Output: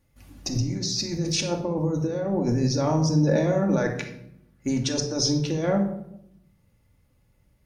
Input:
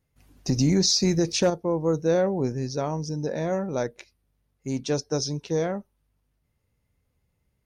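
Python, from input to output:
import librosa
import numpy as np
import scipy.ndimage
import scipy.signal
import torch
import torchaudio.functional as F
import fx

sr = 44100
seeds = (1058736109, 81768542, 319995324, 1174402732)

y = fx.peak_eq(x, sr, hz=1600.0, db=8.5, octaves=0.74, at=(3.75, 4.93))
y = fx.over_compress(y, sr, threshold_db=-29.0, ratio=-1.0)
y = fx.room_shoebox(y, sr, seeds[0], volume_m3=1900.0, walls='furnished', distance_m=2.4)
y = y * librosa.db_to_amplitude(1.5)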